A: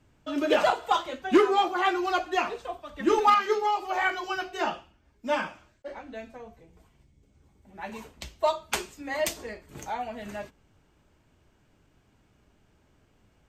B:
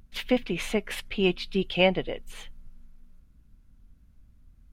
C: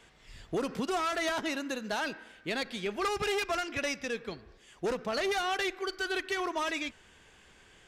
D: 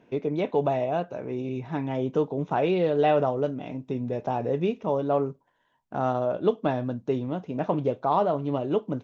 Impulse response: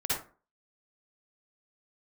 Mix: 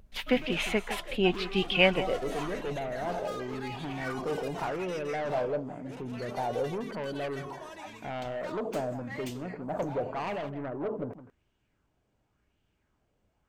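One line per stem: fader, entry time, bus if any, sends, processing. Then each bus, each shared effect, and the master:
−12.5 dB, 0.00 s, no send, no echo send, sub-octave generator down 1 octave, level −4 dB; gain into a clipping stage and back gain 28.5 dB
−2.5 dB, 0.00 s, no send, echo send −13 dB, no processing
−17.5 dB, 1.05 s, no send, echo send −4 dB, high-shelf EQ 7,900 Hz +11.5 dB
−6.0 dB, 2.10 s, no send, echo send −12 dB, inverse Chebyshev low-pass filter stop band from 3,700 Hz; soft clipping −25 dBFS, distortion −9 dB; level that may fall only so fast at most 60 dB per second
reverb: not used
echo: single-tap delay 165 ms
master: auto-filter bell 0.91 Hz 530–3,100 Hz +8 dB

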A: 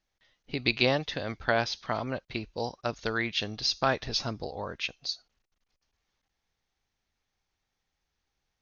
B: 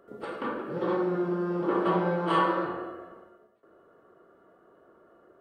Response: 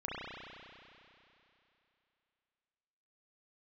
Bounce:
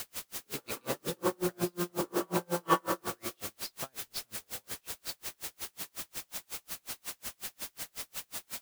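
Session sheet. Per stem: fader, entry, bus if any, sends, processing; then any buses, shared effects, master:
−9.0 dB, 0.00 s, no send, no processing
+1.5 dB, 0.35 s, no send, no processing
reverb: not used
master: bit-depth reduction 6 bits, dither triangular; tremolo with a sine in dB 5.5 Hz, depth 40 dB

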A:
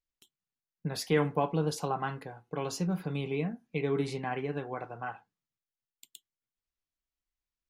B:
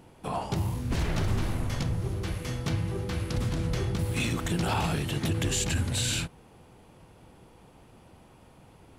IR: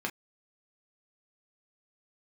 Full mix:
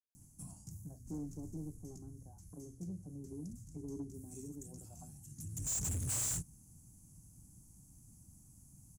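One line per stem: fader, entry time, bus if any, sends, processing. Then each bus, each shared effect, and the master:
−3.5 dB, 0.00 s, no send, high-pass filter 280 Hz 12 dB per octave; envelope-controlled low-pass 390–1,700 Hz down, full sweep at −33 dBFS
−3.5 dB, 0.15 s, no send, automatic ducking −20 dB, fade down 0.60 s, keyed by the first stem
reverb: not used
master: drawn EQ curve 150 Hz 0 dB, 290 Hz −8 dB, 460 Hz −30 dB, 670 Hz −23 dB, 3,600 Hz −26 dB, 6,500 Hz +13 dB, 12,000 Hz +10 dB; soft clipping −34 dBFS, distortion −4 dB

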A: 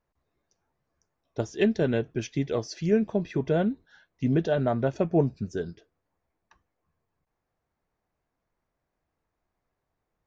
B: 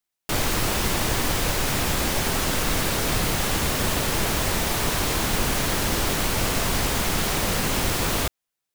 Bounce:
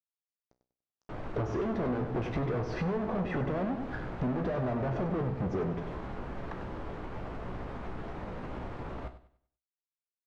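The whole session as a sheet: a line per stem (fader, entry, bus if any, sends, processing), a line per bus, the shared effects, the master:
−5.5 dB, 0.00 s, no send, echo send −9 dB, fuzz pedal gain 50 dB, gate −57 dBFS
−7.0 dB, 0.80 s, no send, echo send −14 dB, brickwall limiter −15 dBFS, peak gain reduction 4.5 dB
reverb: not used
echo: repeating echo 97 ms, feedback 32%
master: low-pass filter 1,200 Hz 12 dB per octave; tuned comb filter 62 Hz, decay 0.26 s, harmonics all, mix 70%; downward compressor 6 to 1, threshold −29 dBFS, peak gain reduction 8.5 dB

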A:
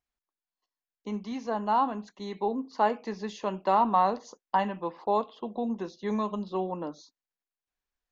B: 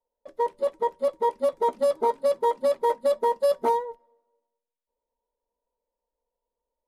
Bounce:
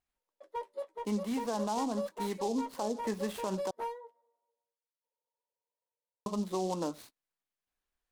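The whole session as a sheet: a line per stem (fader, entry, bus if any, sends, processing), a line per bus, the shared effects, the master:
+1.0 dB, 0.00 s, muted 0:03.71–0:06.26, no send, treble cut that deepens with the level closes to 460 Hz, closed at −21 dBFS; short delay modulated by noise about 5,200 Hz, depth 0.043 ms
−4.5 dB, 0.15 s, no send, high-pass filter 450 Hz 12 dB per octave; asymmetric clip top −20 dBFS; flanger 0.47 Hz, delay 7.2 ms, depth 6.4 ms, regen −38%; automatic ducking −6 dB, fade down 0.75 s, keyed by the first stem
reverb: not used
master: brickwall limiter −24 dBFS, peak gain reduction 11.5 dB

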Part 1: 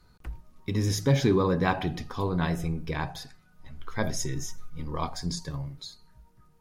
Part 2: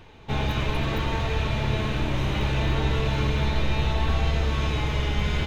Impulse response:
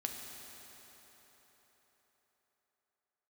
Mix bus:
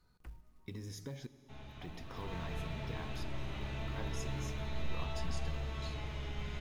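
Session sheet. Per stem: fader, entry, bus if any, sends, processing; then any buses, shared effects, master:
−13.0 dB, 0.00 s, muted 0:01.27–0:01.81, send −10 dB, downward compressor 8 to 1, threshold −31 dBFS, peak gain reduction 14 dB; floating-point word with a short mantissa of 4 bits
0:02.05 −20 dB → 0:02.32 −10.5 dB, 1.20 s, send −4.5 dB, notch filter 480 Hz, Q 12; tuned comb filter 660 Hz, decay 0.33 s, mix 70%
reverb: on, RT60 4.5 s, pre-delay 4 ms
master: no processing

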